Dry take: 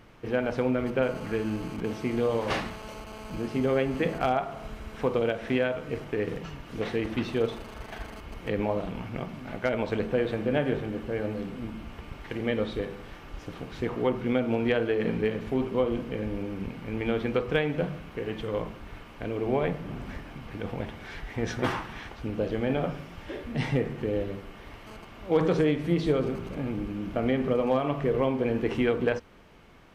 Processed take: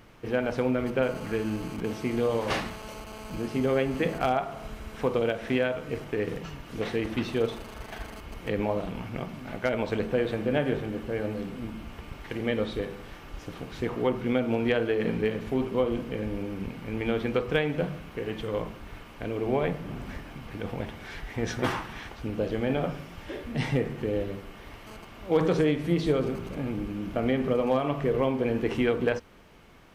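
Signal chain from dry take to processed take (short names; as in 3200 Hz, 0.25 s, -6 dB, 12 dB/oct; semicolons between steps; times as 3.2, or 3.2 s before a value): high shelf 6400 Hz +6 dB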